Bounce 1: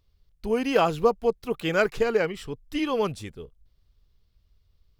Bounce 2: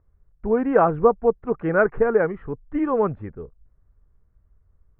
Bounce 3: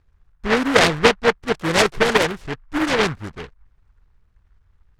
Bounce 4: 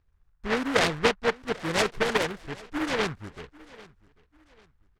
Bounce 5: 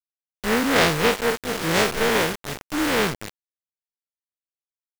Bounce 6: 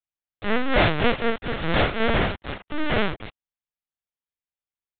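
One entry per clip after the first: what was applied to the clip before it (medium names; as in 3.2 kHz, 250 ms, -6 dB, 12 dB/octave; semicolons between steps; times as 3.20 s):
steep low-pass 1.7 kHz 36 dB/octave; trim +4.5 dB
delay time shaken by noise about 1.2 kHz, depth 0.27 ms; trim +2 dB
feedback delay 793 ms, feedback 34%, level -22 dB; trim -8.5 dB
spectral blur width 94 ms; word length cut 6-bit, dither none; trim +8 dB
LPC vocoder at 8 kHz pitch kept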